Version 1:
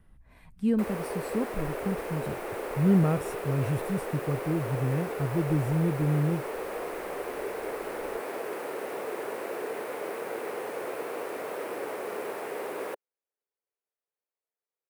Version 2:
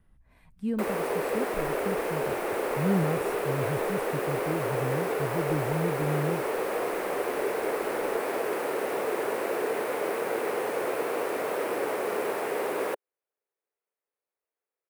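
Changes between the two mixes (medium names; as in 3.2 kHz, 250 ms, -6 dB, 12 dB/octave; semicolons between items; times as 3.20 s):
speech -4.5 dB; background +5.5 dB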